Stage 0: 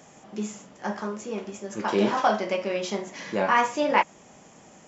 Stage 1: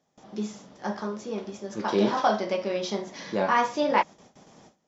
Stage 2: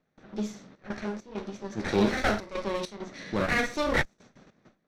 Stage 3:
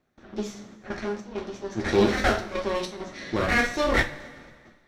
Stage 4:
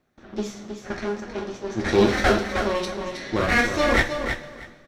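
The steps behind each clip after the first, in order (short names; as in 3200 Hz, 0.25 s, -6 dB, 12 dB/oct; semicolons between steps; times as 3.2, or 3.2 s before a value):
high shelf 2700 Hz -11 dB; gate with hold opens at -42 dBFS; band shelf 4500 Hz +10 dB 1 oct
minimum comb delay 0.51 ms; step gate "xxxxx.xx.xx" 100 bpm -12 dB; low-pass opened by the level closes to 3000 Hz, open at -25 dBFS
two-slope reverb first 0.24 s, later 1.8 s, from -18 dB, DRR 3.5 dB; gain +2 dB
feedback echo 0.318 s, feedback 18%, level -7.5 dB; gain +2.5 dB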